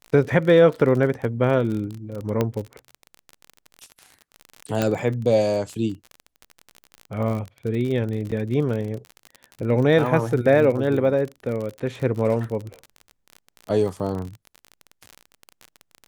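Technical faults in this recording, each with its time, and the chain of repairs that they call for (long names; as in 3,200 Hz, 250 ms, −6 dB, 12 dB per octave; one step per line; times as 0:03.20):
surface crackle 37 per second −28 dBFS
0:02.41: click −9 dBFS
0:04.82: click −8 dBFS
0:08.31–0:08.32: drop-out 7.3 ms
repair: click removal
repair the gap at 0:08.31, 7.3 ms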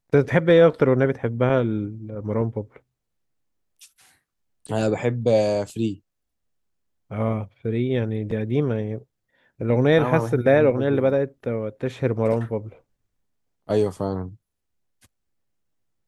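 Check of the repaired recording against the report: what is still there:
none of them is left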